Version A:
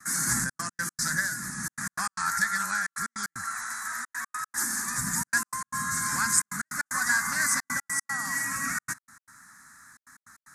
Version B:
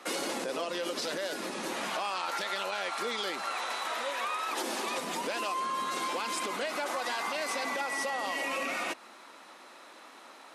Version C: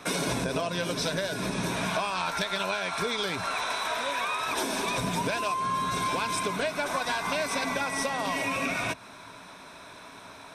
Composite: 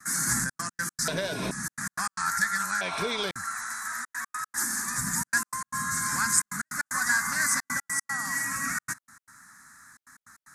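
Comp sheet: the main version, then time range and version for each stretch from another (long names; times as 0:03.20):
A
0:01.08–0:01.51: punch in from C
0:02.81–0:03.31: punch in from C
not used: B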